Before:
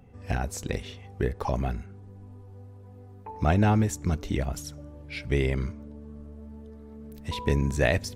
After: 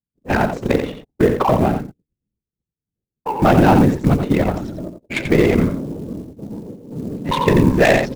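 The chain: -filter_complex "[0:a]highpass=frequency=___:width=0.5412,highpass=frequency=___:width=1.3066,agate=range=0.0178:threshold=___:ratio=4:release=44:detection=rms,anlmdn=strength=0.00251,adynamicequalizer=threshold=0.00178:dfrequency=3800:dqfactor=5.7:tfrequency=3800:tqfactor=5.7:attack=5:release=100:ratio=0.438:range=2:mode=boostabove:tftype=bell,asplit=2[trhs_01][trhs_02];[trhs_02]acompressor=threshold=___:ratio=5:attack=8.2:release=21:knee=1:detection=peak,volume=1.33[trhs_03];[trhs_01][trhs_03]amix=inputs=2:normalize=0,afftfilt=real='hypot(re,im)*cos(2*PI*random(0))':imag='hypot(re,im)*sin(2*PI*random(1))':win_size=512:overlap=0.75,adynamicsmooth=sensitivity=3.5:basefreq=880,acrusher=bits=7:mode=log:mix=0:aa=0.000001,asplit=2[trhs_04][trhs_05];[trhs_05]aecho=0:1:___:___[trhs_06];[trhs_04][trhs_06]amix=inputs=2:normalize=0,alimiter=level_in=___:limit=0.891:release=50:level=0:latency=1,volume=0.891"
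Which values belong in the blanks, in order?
140, 140, 0.00562, 0.0141, 87, 0.398, 7.94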